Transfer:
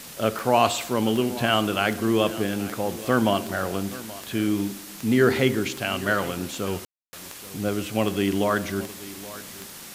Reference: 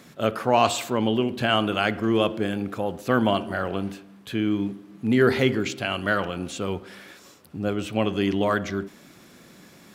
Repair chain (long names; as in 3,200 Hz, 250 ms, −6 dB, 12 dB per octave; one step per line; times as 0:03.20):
click removal
ambience match 0:06.85–0:07.13
broadband denoise 9 dB, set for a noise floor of −41 dBFS
echo removal 828 ms −17.5 dB